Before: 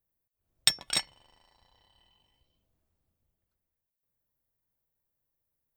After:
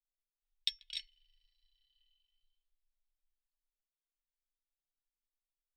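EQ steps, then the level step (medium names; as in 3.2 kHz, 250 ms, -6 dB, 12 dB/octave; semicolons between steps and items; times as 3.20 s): inverse Chebyshev band-stop 120–680 Hz, stop band 80 dB; distance through air 380 m; +3.5 dB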